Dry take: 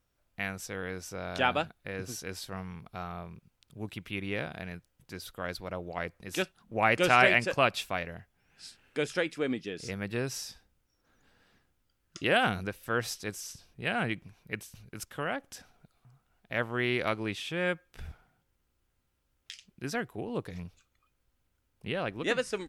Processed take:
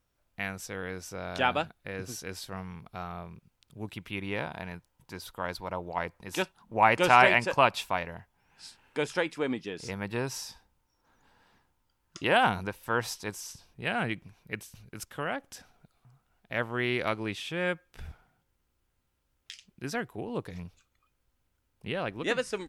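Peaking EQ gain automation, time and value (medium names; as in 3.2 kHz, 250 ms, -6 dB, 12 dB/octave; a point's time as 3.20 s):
peaking EQ 930 Hz 0.41 oct
3.81 s +2.5 dB
4.44 s +12.5 dB
13.26 s +12.5 dB
14.05 s +2.5 dB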